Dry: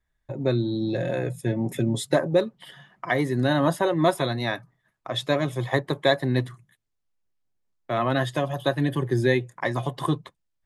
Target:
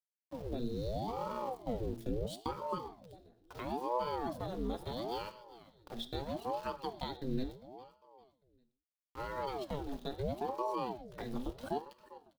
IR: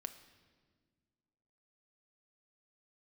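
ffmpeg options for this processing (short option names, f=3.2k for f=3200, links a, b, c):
-filter_complex "[0:a]adynamicequalizer=threshold=0.00178:dfrequency=4300:dqfactor=7:tfrequency=4300:tqfactor=7:attack=5:release=100:ratio=0.375:range=3.5:mode=boostabove:tftype=bell,aeval=exprs='val(0)*gte(abs(val(0)),0.02)':c=same,acompressor=threshold=-22dB:ratio=5,equalizer=f=125:t=o:w=1:g=5,equalizer=f=250:t=o:w=1:g=5,equalizer=f=500:t=o:w=1:g=-3,equalizer=f=1k:t=o:w=1:g=-5,equalizer=f=2k:t=o:w=1:g=-8,equalizer=f=4k:t=o:w=1:g=3,equalizer=f=8k:t=o:w=1:g=-5,atempo=0.86,aecho=1:1:400|800|1200:0.141|0.048|0.0163[a];[1:a]atrim=start_sample=2205,atrim=end_sample=6174[b];[a][b]afir=irnorm=-1:irlink=0,aeval=exprs='val(0)*sin(2*PI*430*n/s+430*0.75/0.75*sin(2*PI*0.75*n/s))':c=same,volume=-7dB"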